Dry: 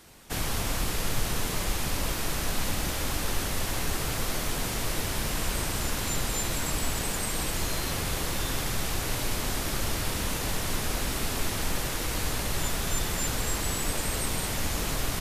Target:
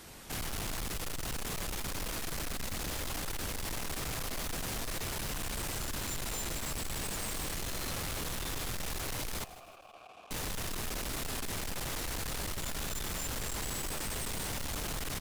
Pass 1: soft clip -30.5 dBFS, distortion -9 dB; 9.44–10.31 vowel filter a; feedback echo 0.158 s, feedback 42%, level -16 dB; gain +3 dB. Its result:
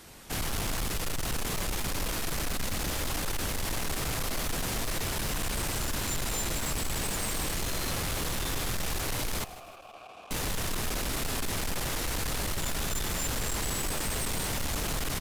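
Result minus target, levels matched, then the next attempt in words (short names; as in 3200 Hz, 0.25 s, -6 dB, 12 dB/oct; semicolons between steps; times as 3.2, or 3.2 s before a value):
soft clip: distortion -4 dB
soft clip -38 dBFS, distortion -5 dB; 9.44–10.31 vowel filter a; feedback echo 0.158 s, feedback 42%, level -16 dB; gain +3 dB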